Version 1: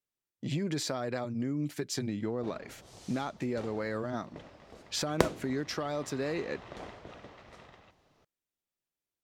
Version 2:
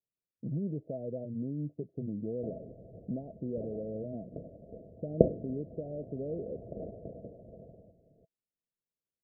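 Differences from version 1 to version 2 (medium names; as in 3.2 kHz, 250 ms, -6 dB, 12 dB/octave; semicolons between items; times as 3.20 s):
background +8.0 dB; master: add rippled Chebyshev low-pass 680 Hz, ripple 6 dB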